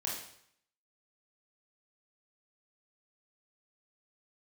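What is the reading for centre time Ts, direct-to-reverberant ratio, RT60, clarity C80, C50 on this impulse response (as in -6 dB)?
45 ms, -4.5 dB, 0.65 s, 7.0 dB, 3.0 dB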